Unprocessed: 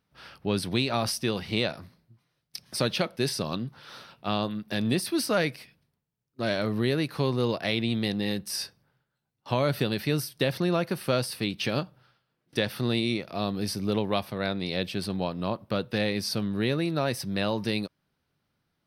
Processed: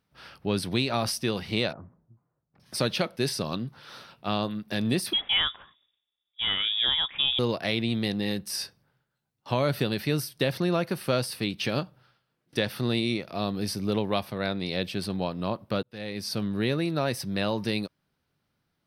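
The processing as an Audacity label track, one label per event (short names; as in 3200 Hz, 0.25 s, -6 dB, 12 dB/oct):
1.730000	2.600000	LPF 1200 Hz 24 dB/oct
5.130000	7.390000	inverted band carrier 3600 Hz
15.830000	16.430000	fade in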